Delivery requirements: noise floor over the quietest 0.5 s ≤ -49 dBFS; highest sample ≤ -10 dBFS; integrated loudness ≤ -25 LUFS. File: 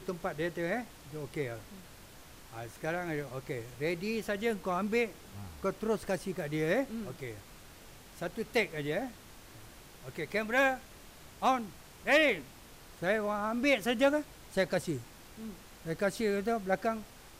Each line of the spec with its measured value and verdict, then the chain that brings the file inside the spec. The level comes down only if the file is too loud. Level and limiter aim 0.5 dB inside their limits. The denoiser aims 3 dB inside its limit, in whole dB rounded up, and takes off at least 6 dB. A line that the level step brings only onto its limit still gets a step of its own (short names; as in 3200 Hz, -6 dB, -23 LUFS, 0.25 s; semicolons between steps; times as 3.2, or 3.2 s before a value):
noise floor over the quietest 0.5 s -53 dBFS: OK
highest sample -16.5 dBFS: OK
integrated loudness -33.0 LUFS: OK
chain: none